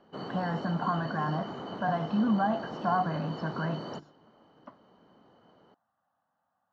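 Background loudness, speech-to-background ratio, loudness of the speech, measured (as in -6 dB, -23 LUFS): -39.5 LUFS, 8.0 dB, -31.5 LUFS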